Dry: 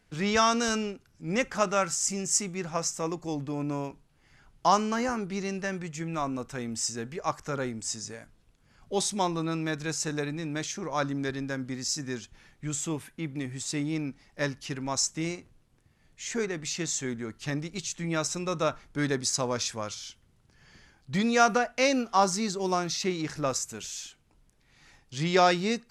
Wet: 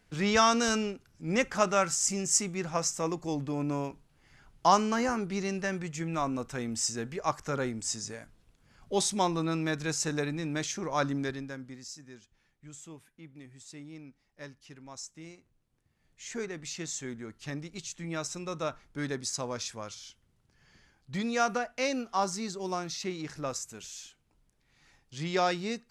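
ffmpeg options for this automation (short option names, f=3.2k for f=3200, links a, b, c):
-af "volume=9.5dB,afade=t=out:st=11.15:d=0.32:silence=0.446684,afade=t=out:st=11.47:d=0.51:silence=0.375837,afade=t=in:st=15.33:d=1.02:silence=0.334965"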